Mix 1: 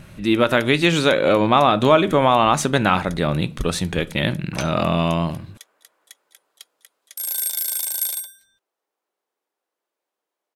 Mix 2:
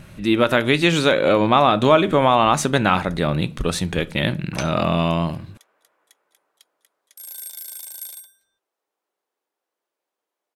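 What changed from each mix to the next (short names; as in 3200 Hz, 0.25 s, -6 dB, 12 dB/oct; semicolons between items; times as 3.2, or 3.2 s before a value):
first sound -11.0 dB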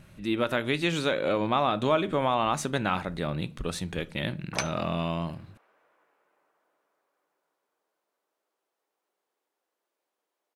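speech -10.0 dB; first sound: muted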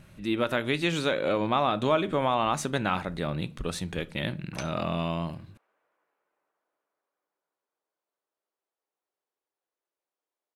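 background -9.0 dB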